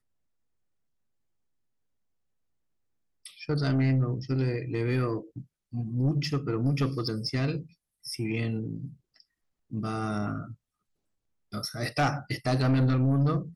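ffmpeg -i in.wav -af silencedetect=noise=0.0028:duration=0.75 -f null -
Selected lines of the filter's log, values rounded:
silence_start: 0.00
silence_end: 3.25 | silence_duration: 3.25
silence_start: 10.54
silence_end: 11.52 | silence_duration: 0.98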